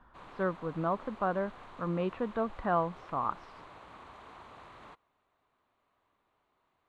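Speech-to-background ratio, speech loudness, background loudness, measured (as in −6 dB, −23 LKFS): 17.5 dB, −34.0 LKFS, −51.5 LKFS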